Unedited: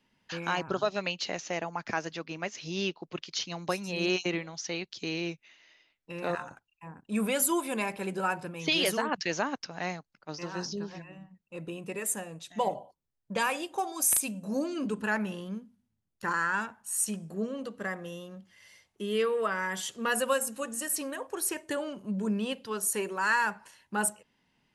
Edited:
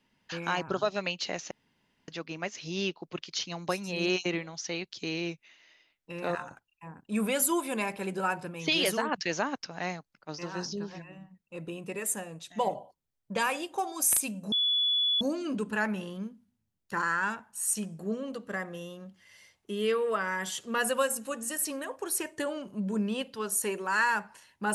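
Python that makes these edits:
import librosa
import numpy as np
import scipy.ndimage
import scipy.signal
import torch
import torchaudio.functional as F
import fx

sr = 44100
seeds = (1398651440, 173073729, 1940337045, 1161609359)

y = fx.edit(x, sr, fx.room_tone_fill(start_s=1.51, length_s=0.57),
    fx.insert_tone(at_s=14.52, length_s=0.69, hz=3420.0, db=-23.5), tone=tone)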